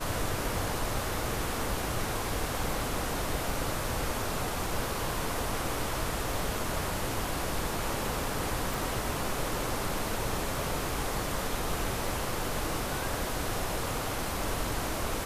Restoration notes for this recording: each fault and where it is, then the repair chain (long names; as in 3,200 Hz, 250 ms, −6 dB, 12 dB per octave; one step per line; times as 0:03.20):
0:08.74: click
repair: click removal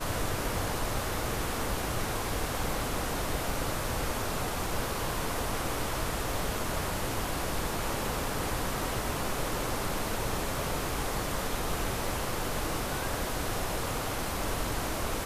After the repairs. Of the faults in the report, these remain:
none of them is left